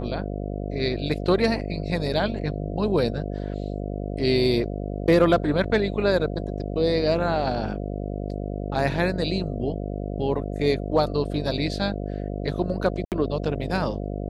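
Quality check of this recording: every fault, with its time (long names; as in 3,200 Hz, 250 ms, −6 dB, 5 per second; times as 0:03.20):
mains buzz 50 Hz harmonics 14 −30 dBFS
0:13.05–0:13.12: drop-out 68 ms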